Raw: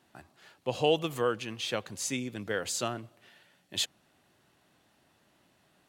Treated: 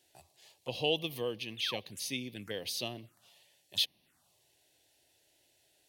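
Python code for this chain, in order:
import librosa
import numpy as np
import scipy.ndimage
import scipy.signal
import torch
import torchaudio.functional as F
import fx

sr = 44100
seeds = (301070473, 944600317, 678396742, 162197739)

y = fx.high_shelf(x, sr, hz=2400.0, db=11.0)
y = fx.env_phaser(y, sr, low_hz=190.0, high_hz=1400.0, full_db=-30.0)
y = fx.spec_paint(y, sr, seeds[0], shape='fall', start_s=1.57, length_s=0.23, low_hz=530.0, high_hz=3800.0, level_db=-40.0)
y = y * 10.0 ** (-5.5 / 20.0)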